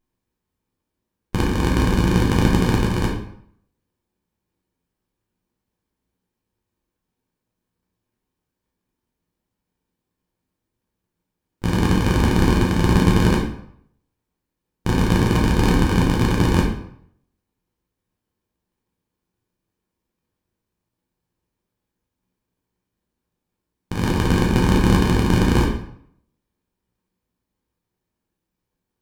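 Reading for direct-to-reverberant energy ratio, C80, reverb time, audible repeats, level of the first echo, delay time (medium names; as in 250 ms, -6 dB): -3.0 dB, 8.0 dB, 0.70 s, no echo, no echo, no echo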